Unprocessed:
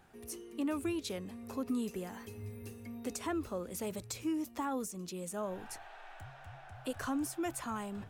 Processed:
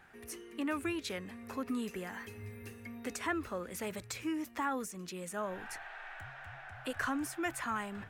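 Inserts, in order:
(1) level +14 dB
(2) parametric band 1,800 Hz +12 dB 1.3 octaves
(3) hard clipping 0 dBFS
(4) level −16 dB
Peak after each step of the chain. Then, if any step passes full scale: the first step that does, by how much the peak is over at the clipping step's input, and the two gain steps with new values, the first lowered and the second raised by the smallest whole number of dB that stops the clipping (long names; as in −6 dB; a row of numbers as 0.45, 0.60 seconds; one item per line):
−11.5, −5.5, −5.5, −21.5 dBFS
no step passes full scale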